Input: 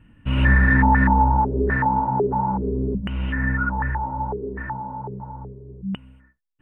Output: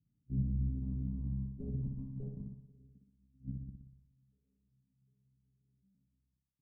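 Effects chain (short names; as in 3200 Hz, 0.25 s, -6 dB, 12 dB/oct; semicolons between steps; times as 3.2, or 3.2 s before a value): zero-crossing step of -21.5 dBFS; gate -14 dBFS, range -55 dB; HPF 40 Hz 24 dB/oct; comb 7.2 ms, depth 41%; sample leveller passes 2; flipped gate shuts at -13 dBFS, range -30 dB; tube stage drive 41 dB, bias 0.65; formant shift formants +3 st; ladder low-pass 230 Hz, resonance 45%; flutter echo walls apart 10.3 m, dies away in 0.8 s; gain +17.5 dB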